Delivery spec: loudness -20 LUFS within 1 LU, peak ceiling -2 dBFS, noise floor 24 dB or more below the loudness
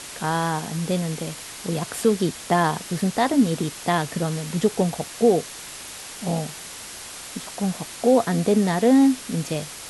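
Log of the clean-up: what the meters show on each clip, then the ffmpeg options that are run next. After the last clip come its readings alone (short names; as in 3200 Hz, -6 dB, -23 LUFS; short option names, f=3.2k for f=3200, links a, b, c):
noise floor -38 dBFS; noise floor target -47 dBFS; loudness -23.0 LUFS; peak -7.5 dBFS; loudness target -20.0 LUFS
-> -af "afftdn=nr=9:nf=-38"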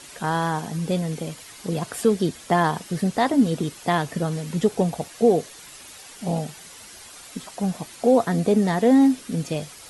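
noise floor -44 dBFS; noise floor target -47 dBFS
-> -af "afftdn=nr=6:nf=-44"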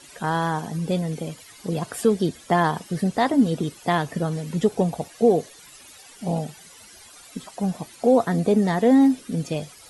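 noise floor -48 dBFS; loudness -23.0 LUFS; peak -7.5 dBFS; loudness target -20.0 LUFS
-> -af "volume=3dB"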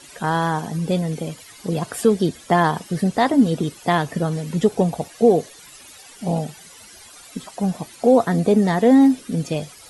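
loudness -20.0 LUFS; peak -4.5 dBFS; noise floor -45 dBFS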